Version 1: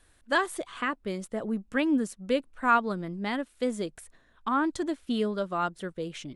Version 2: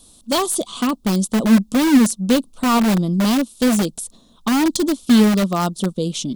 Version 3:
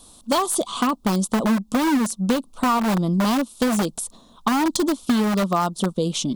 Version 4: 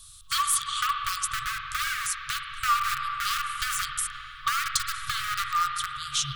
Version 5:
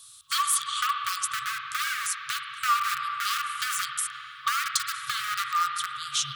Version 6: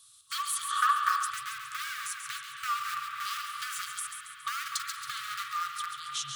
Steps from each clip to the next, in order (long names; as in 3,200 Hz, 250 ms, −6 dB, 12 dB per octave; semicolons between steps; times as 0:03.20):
drawn EQ curve 110 Hz 0 dB, 220 Hz +15 dB, 320 Hz +4 dB, 1,200 Hz 0 dB, 1,700 Hz −22 dB, 3,500 Hz +10 dB, 6,000 Hz +12 dB; in parallel at −5.5 dB: wrap-around overflow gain 19 dB; on the sum: level +4 dB
parametric band 1,000 Hz +8 dB 1.4 octaves; downward compressor, threshold −17 dBFS, peak gain reduction 10 dB
spring reverb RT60 3.7 s, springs 45/56 ms, chirp 65 ms, DRR 2.5 dB; brick-wall band-stop 140–1,100 Hz
high-pass filter 210 Hz 12 dB per octave
echo with a time of its own for lows and highs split 2,700 Hz, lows 253 ms, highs 138 ms, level −7 dB; gain on a spectral selection 0:00.70–0:01.31, 440–1,900 Hz +11 dB; level −8 dB